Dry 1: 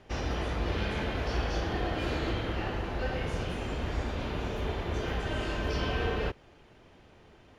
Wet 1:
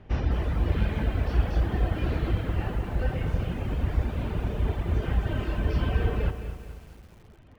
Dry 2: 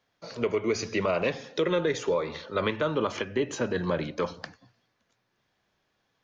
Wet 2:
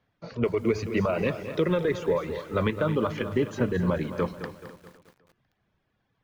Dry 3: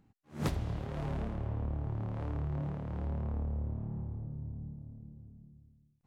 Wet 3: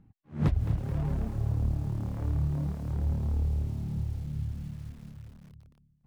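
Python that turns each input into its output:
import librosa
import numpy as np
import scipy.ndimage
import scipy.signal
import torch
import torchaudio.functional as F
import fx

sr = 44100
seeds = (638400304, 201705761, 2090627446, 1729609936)

y = fx.dereverb_blind(x, sr, rt60_s=0.88)
y = fx.bass_treble(y, sr, bass_db=10, treble_db=-12)
y = fx.echo_feedback(y, sr, ms=252, feedback_pct=40, wet_db=-15)
y = fx.echo_crushed(y, sr, ms=215, feedback_pct=55, bits=8, wet_db=-11.5)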